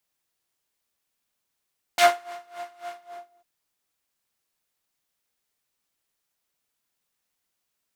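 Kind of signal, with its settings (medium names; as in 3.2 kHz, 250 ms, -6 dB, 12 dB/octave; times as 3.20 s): synth patch with tremolo F5, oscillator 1 triangle, detune 21 cents, sub -18.5 dB, noise -2 dB, filter bandpass, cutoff 580 Hz, Q 1.1, filter envelope 2.5 oct, filter decay 0.08 s, attack 1.3 ms, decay 0.26 s, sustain -23.5 dB, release 0.49 s, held 0.96 s, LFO 3.6 Hz, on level 20.5 dB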